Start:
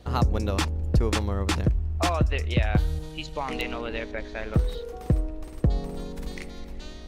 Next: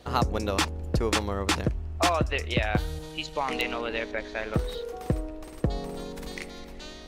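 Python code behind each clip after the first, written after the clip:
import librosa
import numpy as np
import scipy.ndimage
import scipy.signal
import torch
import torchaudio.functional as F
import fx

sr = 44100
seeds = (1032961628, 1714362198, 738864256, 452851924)

y = fx.low_shelf(x, sr, hz=200.0, db=-11.0)
y = y * librosa.db_to_amplitude(3.0)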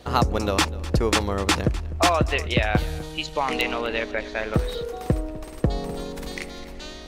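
y = x + 10.0 ** (-18.5 / 20.0) * np.pad(x, (int(252 * sr / 1000.0), 0))[:len(x)]
y = y * librosa.db_to_amplitude(4.5)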